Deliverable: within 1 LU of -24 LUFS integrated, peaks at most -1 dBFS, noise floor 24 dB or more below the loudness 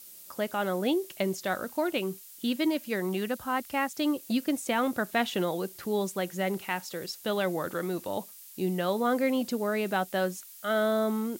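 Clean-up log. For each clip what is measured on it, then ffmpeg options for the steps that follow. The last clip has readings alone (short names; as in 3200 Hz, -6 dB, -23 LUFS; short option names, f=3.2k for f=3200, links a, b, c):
noise floor -49 dBFS; noise floor target -54 dBFS; loudness -30.0 LUFS; peak -13.0 dBFS; loudness target -24.0 LUFS
-> -af "afftdn=nr=6:nf=-49"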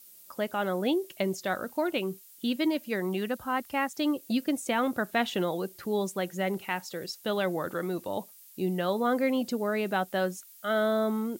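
noise floor -53 dBFS; noise floor target -54 dBFS
-> -af "afftdn=nr=6:nf=-53"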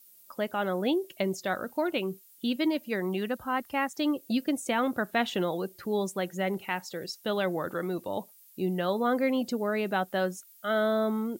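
noise floor -57 dBFS; loudness -30.0 LUFS; peak -13.0 dBFS; loudness target -24.0 LUFS
-> -af "volume=6dB"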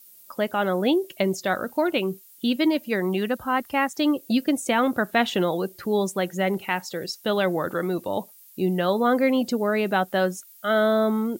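loudness -24.0 LUFS; peak -7.0 dBFS; noise floor -51 dBFS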